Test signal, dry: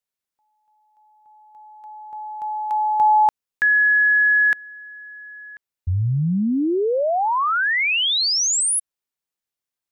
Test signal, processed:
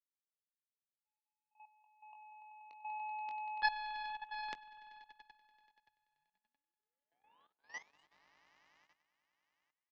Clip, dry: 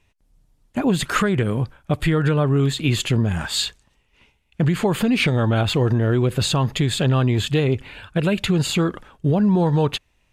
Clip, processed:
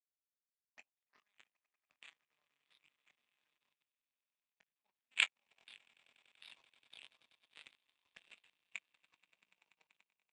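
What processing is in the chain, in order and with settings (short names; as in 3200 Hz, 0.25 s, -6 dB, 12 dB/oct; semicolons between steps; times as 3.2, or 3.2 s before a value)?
LFO low-pass sine 1.6 Hz 930–2500 Hz; fixed phaser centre 1400 Hz, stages 6; auto-wah 700–3700 Hz, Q 6.7, up, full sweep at -21 dBFS; on a send: swelling echo 96 ms, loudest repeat 8, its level -12 dB; on the sum: power-law curve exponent 3; three-band isolator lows -14 dB, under 210 Hz, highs -12 dB, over 5900 Hz; doubler 21 ms -10 dB; level quantiser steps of 14 dB; low shelf 360 Hz +7 dB; gain +12.5 dB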